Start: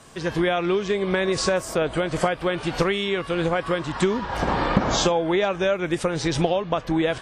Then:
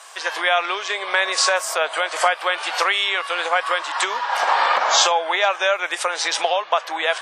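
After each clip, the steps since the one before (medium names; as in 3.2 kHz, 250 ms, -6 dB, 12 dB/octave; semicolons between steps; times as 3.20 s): high-pass 710 Hz 24 dB/octave; trim +8.5 dB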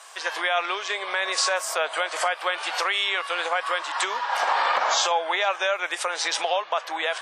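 peak limiter -9 dBFS, peak gain reduction 5 dB; trim -3.5 dB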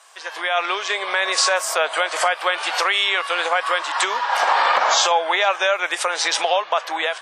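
level rider gain up to 11.5 dB; trim -4.5 dB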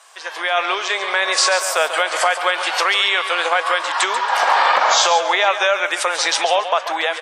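feedback delay 139 ms, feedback 28%, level -10.5 dB; trim +2 dB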